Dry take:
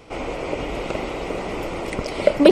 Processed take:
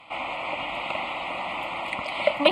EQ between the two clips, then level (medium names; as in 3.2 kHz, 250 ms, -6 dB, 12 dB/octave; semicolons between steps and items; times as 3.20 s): band-pass filter 1.8 kHz, Q 0.57; static phaser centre 1.6 kHz, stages 6; +5.5 dB